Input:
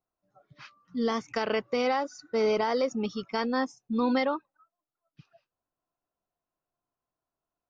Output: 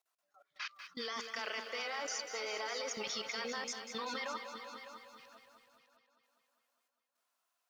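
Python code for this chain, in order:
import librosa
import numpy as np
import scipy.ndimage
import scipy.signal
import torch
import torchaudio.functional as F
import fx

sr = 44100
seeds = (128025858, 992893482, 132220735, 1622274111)

p1 = scipy.signal.sosfilt(scipy.signal.butter(2, 1200.0, 'highpass', fs=sr, output='sos'), x)
p2 = fx.over_compress(p1, sr, threshold_db=-47.0, ratio=-1.0)
p3 = p1 + (p2 * 10.0 ** (2.0 / 20.0))
p4 = fx.rotary_switch(p3, sr, hz=7.5, then_hz=1.1, switch_at_s=4.27)
p5 = fx.level_steps(p4, sr, step_db=22)
p6 = p5 + fx.echo_heads(p5, sr, ms=202, heads='all three', feedback_pct=41, wet_db=-14.0, dry=0)
p7 = fx.echo_crushed(p6, sr, ms=193, feedback_pct=55, bits=11, wet_db=-10.0)
y = p7 * 10.0 ** (3.5 / 20.0)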